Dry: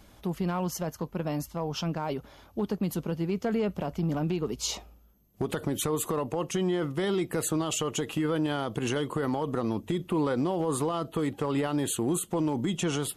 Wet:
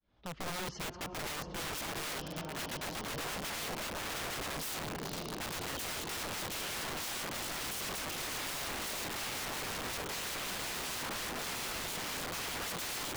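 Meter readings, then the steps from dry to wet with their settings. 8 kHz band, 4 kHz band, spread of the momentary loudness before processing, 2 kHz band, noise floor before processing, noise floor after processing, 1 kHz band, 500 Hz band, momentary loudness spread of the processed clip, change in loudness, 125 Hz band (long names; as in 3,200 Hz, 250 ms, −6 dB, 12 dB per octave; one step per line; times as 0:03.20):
−3.0 dB, +1.0 dB, 5 LU, +2.0 dB, −56 dBFS, −45 dBFS, −5.0 dB, −13.5 dB, 3 LU, −7.0 dB, −15.0 dB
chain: fade in at the beginning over 0.98 s
low-pass filter 4,600 Hz 24 dB per octave
feedback delay with all-pass diffusion 500 ms, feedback 74%, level −12 dB
wrap-around overflow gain 34 dB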